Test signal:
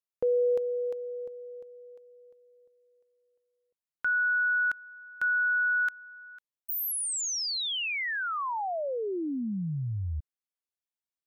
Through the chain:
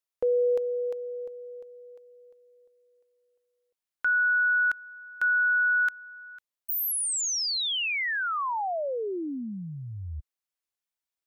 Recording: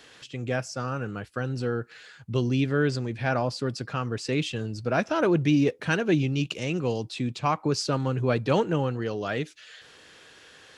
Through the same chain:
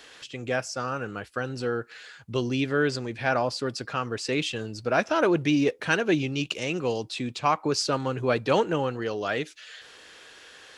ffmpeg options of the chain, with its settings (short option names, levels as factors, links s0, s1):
-af "equalizer=f=130:w=0.63:g=-9,volume=1.41"